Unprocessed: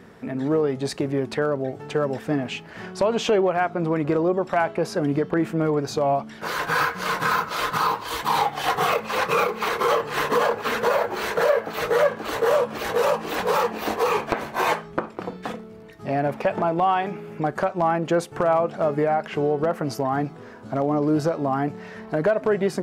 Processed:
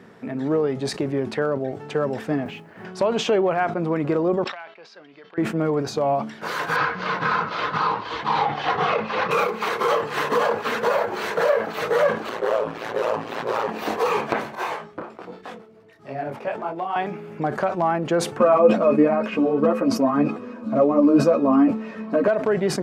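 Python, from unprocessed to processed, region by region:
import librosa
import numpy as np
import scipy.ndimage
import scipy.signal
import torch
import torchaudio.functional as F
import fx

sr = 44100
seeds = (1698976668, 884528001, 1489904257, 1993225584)

y = fx.chain(x, sr, fx.lowpass(hz=1300.0, slope=6),
    fx.mod_noise(seeds[0], snr_db=26),
    fx.band_widen(depth_pct=40), at=(2.45, 2.85))
y = fx.chain(y, sr, fx.lowpass(hz=4100.0, slope=24),
    fx.differentiator(), at=(4.44, 5.38))
y = fx.chain(y, sr, fx.lowpass(hz=5300.0, slope=24),
    fx.bass_treble(bass_db=3, treble_db=-4), at=(6.76, 9.31))
y = fx.chain(y, sr, fx.high_shelf(hz=6600.0, db=-9.0),
    fx.hum_notches(base_hz=50, count=6),
    fx.ring_mod(carrier_hz=56.0), at=(12.29, 13.69))
y = fx.chain(y, sr, fx.peak_eq(hz=180.0, db=-5.5, octaves=0.83),
    fx.harmonic_tremolo(hz=6.9, depth_pct=50, crossover_hz=430.0),
    fx.detune_double(cents=39), at=(14.55, 16.96))
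y = fx.chain(y, sr, fx.comb(ms=3.2, depth=0.44),
    fx.small_body(hz=(240.0, 490.0, 1100.0, 2500.0), ring_ms=50, db=16),
    fx.ensemble(), at=(18.38, 22.28))
y = scipy.signal.sosfilt(scipy.signal.butter(2, 110.0, 'highpass', fs=sr, output='sos'), y)
y = fx.high_shelf(y, sr, hz=8300.0, db=-7.5)
y = fx.sustainer(y, sr, db_per_s=110.0)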